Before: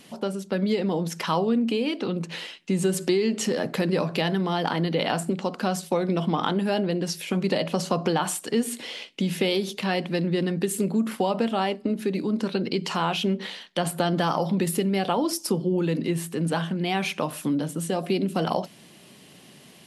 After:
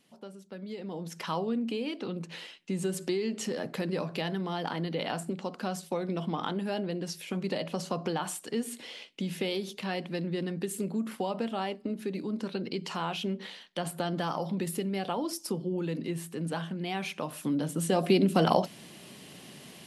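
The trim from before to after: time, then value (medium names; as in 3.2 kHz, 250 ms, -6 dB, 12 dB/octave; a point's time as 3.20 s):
0.64 s -17 dB
1.24 s -8 dB
17.22 s -8 dB
18.04 s +1.5 dB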